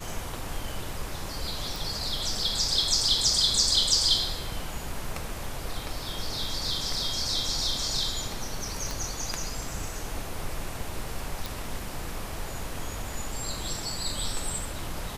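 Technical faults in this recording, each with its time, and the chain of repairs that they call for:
0:01.76: click
0:08.91: click
0:11.46: click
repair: click removal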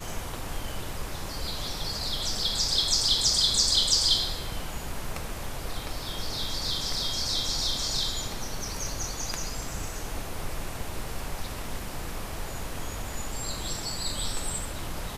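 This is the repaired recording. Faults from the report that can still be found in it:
0:08.91: click

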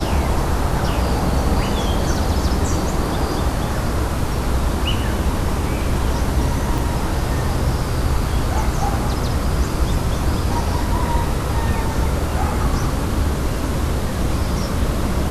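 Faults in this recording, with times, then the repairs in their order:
0:06.78: drop-out 2.2 ms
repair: repair the gap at 0:06.78, 2.2 ms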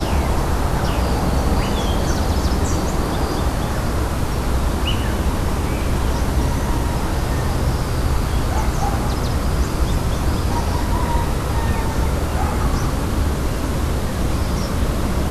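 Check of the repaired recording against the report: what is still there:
none of them is left

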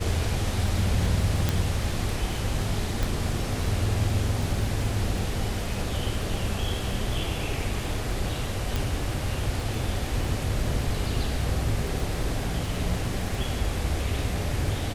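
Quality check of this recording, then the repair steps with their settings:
surface crackle 55 per second −34 dBFS
0:01.49: click −9 dBFS
0:03.03: click
0:08.76: click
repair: click removal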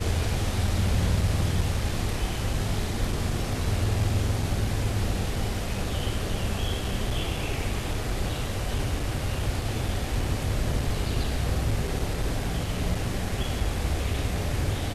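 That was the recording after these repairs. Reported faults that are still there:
0:03.03: click
0:08.76: click

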